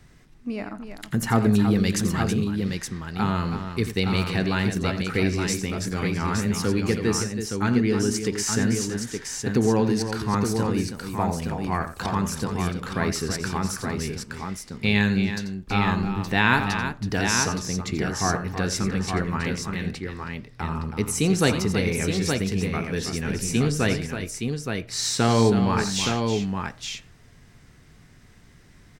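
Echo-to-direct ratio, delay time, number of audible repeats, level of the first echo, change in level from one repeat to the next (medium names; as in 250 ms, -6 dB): -3.5 dB, 87 ms, 3, -12.0 dB, no regular repeats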